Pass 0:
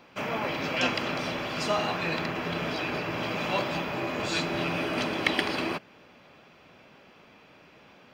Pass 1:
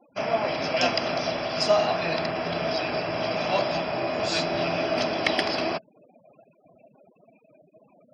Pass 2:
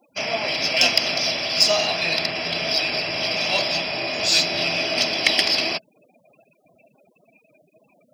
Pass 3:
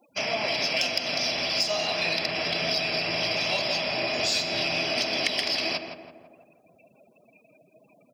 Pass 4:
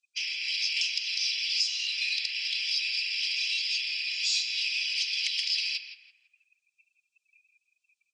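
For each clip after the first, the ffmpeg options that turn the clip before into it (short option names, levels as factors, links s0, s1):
-af "equalizer=f=5100:t=o:w=0.26:g=13.5,afftfilt=real='re*gte(hypot(re,im),0.00631)':imag='im*gte(hypot(re,im),0.00631)':win_size=1024:overlap=0.75,equalizer=f=670:t=o:w=0.33:g=13"
-af "aexciter=amount=3:drive=8.3:freq=2000,volume=0.794"
-filter_complex "[0:a]acompressor=threshold=0.0794:ratio=6,asplit=2[s0][s1];[s1]adelay=166,lowpass=f=1600:p=1,volume=0.501,asplit=2[s2][s3];[s3]adelay=166,lowpass=f=1600:p=1,volume=0.53,asplit=2[s4][s5];[s5]adelay=166,lowpass=f=1600:p=1,volume=0.53,asplit=2[s6][s7];[s7]adelay=166,lowpass=f=1600:p=1,volume=0.53,asplit=2[s8][s9];[s9]adelay=166,lowpass=f=1600:p=1,volume=0.53,asplit=2[s10][s11];[s11]adelay=166,lowpass=f=1600:p=1,volume=0.53,asplit=2[s12][s13];[s13]adelay=166,lowpass=f=1600:p=1,volume=0.53[s14];[s2][s4][s6][s8][s10][s12][s14]amix=inputs=7:normalize=0[s15];[s0][s15]amix=inputs=2:normalize=0,volume=0.841"
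-af "asoftclip=type=tanh:threshold=0.141,asuperpass=centerf=4600:order=8:qfactor=0.78" -ar 32000 -c:a libvorbis -b:a 48k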